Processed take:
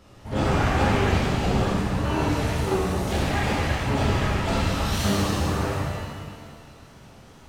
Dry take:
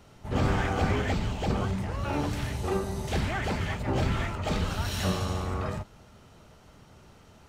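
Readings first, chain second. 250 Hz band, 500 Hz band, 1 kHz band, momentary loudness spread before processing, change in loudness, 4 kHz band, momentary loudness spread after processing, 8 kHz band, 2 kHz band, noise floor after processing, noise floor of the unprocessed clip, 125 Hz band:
+6.5 dB, +6.0 dB, +6.5 dB, 5 LU, +5.5 dB, +6.5 dB, 8 LU, +7.0 dB, +6.0 dB, -48 dBFS, -55 dBFS, +5.0 dB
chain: wow and flutter 140 cents; shimmer reverb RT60 1.8 s, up +7 st, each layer -8 dB, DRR -4 dB

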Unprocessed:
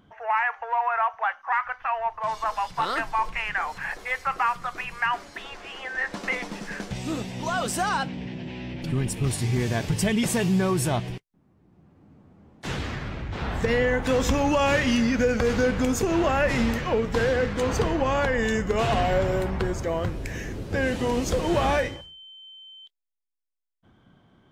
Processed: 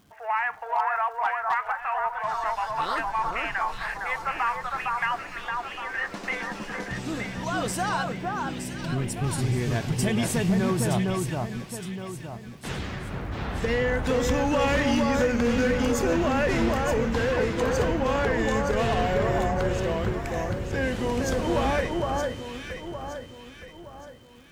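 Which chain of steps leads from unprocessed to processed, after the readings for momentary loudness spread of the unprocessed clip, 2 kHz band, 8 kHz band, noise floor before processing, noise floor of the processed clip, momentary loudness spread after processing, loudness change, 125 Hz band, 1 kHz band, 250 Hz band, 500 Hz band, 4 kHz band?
12 LU, -1.0 dB, -1.5 dB, -62 dBFS, -44 dBFS, 12 LU, -1.0 dB, 0.0 dB, -0.5 dB, -0.5 dB, -0.5 dB, -1.5 dB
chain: crackle 430/s -48 dBFS; echo with dull and thin repeats by turns 0.459 s, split 1600 Hz, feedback 62%, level -2 dB; hard clip -14.5 dBFS, distortion -23 dB; gain -2.5 dB

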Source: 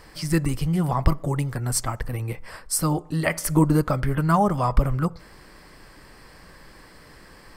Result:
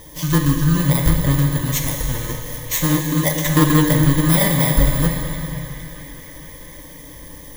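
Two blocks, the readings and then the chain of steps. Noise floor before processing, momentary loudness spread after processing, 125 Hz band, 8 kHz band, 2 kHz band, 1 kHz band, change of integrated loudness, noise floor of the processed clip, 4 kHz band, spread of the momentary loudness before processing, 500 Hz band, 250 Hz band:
-49 dBFS, 22 LU, +6.5 dB, +6.0 dB, +7.5 dB, -0.5 dB, +6.0 dB, -38 dBFS, +10.5 dB, 10 LU, +3.0 dB, +6.0 dB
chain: FFT order left unsorted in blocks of 32 samples; in parallel at +1.5 dB: compressor, threshold -30 dBFS, peak gain reduction 18 dB; on the sum: ripple EQ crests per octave 1.1, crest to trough 12 dB; on a send: narrowing echo 0.463 s, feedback 71%, band-pass 2100 Hz, level -13.5 dB; on the sum: plate-style reverb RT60 3 s, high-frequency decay 0.95×, DRR 1 dB; Doppler distortion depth 0.13 ms; gain -1 dB

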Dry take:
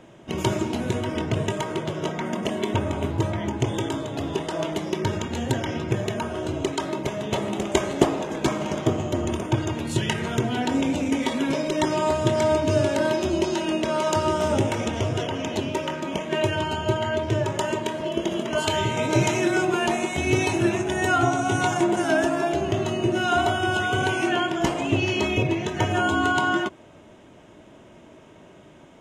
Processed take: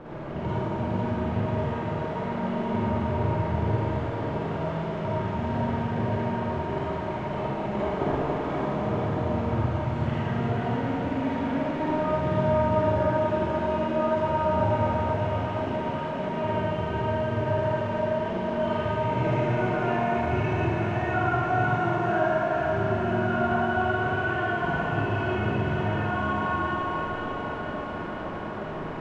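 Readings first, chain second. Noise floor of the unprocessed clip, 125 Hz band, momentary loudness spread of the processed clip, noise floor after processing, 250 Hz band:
-49 dBFS, 0.0 dB, 6 LU, -33 dBFS, -3.5 dB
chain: delta modulation 64 kbps, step -27.5 dBFS; LPF 1200 Hz 12 dB/oct; dynamic EQ 350 Hz, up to -8 dB, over -37 dBFS, Q 1.1; thinning echo 0.492 s, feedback 73%, high-pass 420 Hz, level -4.5 dB; Schroeder reverb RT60 2.6 s, DRR -10 dB; gain -9 dB

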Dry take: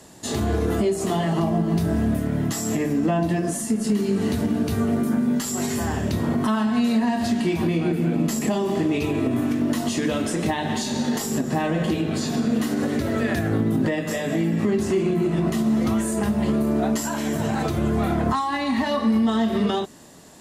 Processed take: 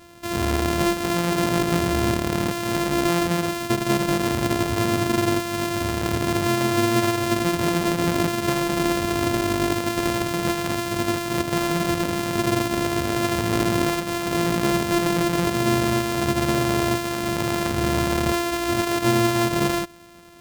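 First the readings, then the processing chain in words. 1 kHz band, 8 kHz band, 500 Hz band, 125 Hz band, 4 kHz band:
+4.0 dB, +2.0 dB, +2.0 dB, -0.5 dB, +6.0 dB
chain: sample sorter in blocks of 128 samples

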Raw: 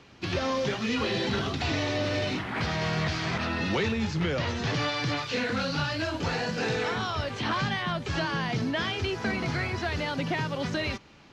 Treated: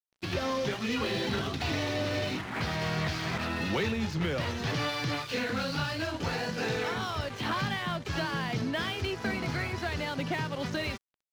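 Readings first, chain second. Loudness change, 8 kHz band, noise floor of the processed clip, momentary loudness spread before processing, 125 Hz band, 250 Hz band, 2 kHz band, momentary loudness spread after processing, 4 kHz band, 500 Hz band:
-2.5 dB, -1.5 dB, -62 dBFS, 2 LU, -2.5 dB, -2.5 dB, -2.5 dB, 3 LU, -2.5 dB, -2.5 dB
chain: crossover distortion -44.5 dBFS; gain -1.5 dB

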